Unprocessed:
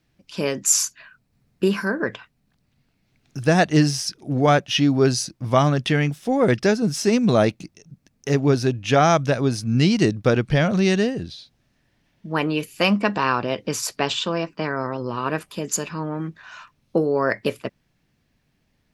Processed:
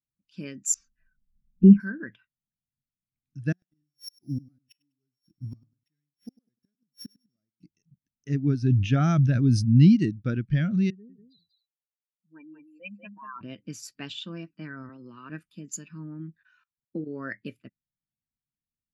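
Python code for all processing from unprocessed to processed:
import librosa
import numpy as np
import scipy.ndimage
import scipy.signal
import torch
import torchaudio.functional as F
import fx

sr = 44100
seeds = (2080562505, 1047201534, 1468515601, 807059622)

y = fx.chain(x, sr, fx.lowpass(hz=4500.0, slope=12),
    fx.tilt_eq(slope=-4.5),
    fx.env_flanger(rest_ms=4.8, full_db=-6.5), at=(0.74, 1.8))
y = fx.chain(y, sr, fx.sample_sort(block=8),
    fx.gate_flip(shuts_db=-14.0, range_db=-39),
    fx.echo_feedback(ms=100, feedback_pct=35, wet_db=-14.5), at=(3.52, 7.63))
y = fx.chain(y, sr, fx.low_shelf(hz=280.0, db=5.0),
    fx.sustainer(db_per_s=39.0), at=(8.62, 9.96))
y = fx.chain(y, sr, fx.spec_expand(power=3.3),
    fx.bandpass_q(hz=1700.0, q=0.72),
    fx.echo_single(ms=190, db=-5.0), at=(10.9, 13.41))
y = fx.chain(y, sr, fx.highpass(hz=58.0, slope=12),
    fx.low_shelf(hz=180.0, db=-10.0),
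    fx.band_squash(depth_pct=40), at=(14.89, 15.3))
y = fx.chain(y, sr, fx.level_steps(step_db=22),
    fx.transient(attack_db=5, sustain_db=0), at=(16.43, 17.08))
y = fx.band_shelf(y, sr, hz=660.0, db=-10.0, octaves=1.7)
y = fx.spectral_expand(y, sr, expansion=1.5)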